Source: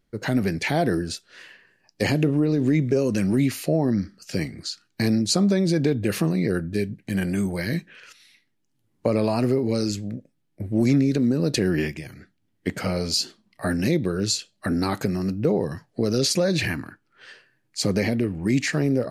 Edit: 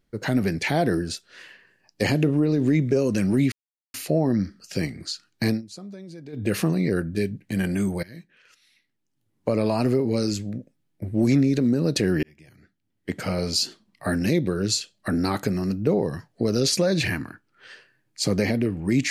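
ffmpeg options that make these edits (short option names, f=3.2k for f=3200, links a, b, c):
-filter_complex "[0:a]asplit=6[a][b][c][d][e][f];[a]atrim=end=3.52,asetpts=PTS-STARTPTS,afade=t=out:st=3.516:d=0.004:c=hsin,apad=pad_dur=0.42[g];[b]atrim=start=3.52:end=5.2,asetpts=PTS-STARTPTS,afade=t=in:d=0.004:c=hsin,afade=t=out:st=1.55:d=0.13:silence=0.105925[h];[c]atrim=start=5.2:end=5.9,asetpts=PTS-STARTPTS,volume=-19.5dB[i];[d]atrim=start=5.9:end=7.61,asetpts=PTS-STARTPTS,afade=t=in:d=0.13:silence=0.105925,afade=t=out:st=1.706:d=0.004:c=hsin:silence=0.0891251[j];[e]atrim=start=7.61:end=11.81,asetpts=PTS-STARTPTS,afade=t=in:d=1.77:silence=0.0891251,afade=t=out:st=4.196:d=0.004:c=hsin[k];[f]atrim=start=11.81,asetpts=PTS-STARTPTS,afade=t=in:d=1.2[l];[g][h][i][j][k][l]concat=n=6:v=0:a=1"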